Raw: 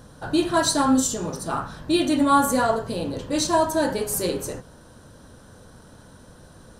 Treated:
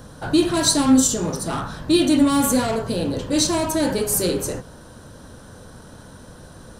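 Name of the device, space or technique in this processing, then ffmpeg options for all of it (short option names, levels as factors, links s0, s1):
one-band saturation: -filter_complex "[0:a]acrossover=split=410|3100[s0][s1][s2];[s1]asoftclip=type=tanh:threshold=0.0282[s3];[s0][s3][s2]amix=inputs=3:normalize=0,volume=1.88"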